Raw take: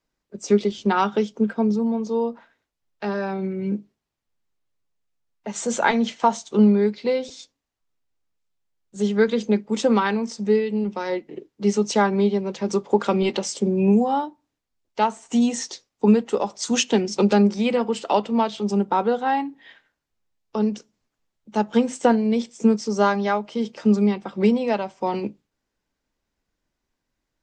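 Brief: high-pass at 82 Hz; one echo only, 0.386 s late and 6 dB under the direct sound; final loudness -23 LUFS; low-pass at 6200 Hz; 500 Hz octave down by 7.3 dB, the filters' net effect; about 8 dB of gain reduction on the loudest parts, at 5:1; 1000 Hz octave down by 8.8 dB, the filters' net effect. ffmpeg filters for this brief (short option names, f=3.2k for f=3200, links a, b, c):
-af "highpass=82,lowpass=6.2k,equalizer=f=500:t=o:g=-7.5,equalizer=f=1k:t=o:g=-8.5,acompressor=threshold=-22dB:ratio=5,aecho=1:1:386:0.501,volume=5.5dB"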